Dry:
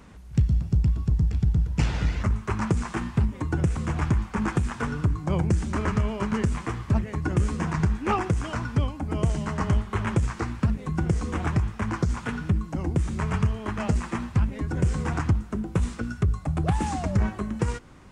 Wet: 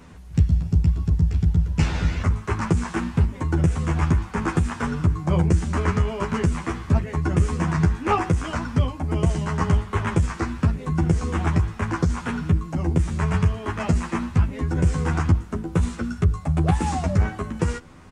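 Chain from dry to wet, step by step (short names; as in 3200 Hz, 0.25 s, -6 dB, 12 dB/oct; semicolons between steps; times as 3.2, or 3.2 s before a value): doubler 12 ms -3 dB; gain +1.5 dB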